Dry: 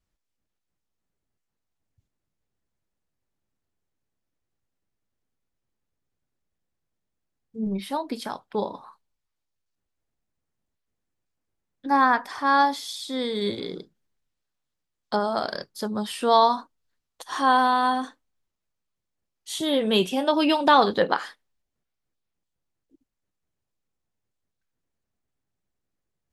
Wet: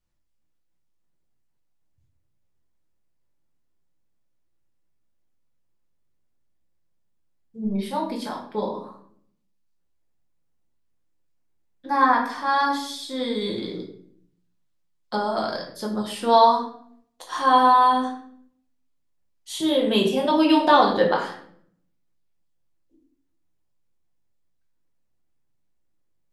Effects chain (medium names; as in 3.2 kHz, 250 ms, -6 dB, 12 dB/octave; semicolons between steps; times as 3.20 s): simulated room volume 110 m³, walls mixed, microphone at 0.89 m; trim -3 dB